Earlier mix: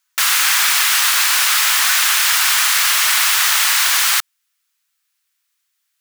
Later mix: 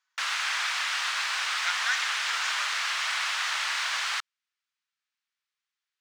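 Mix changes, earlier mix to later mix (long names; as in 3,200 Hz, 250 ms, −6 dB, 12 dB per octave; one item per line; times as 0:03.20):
background −10.0 dB
master: add high-frequency loss of the air 120 metres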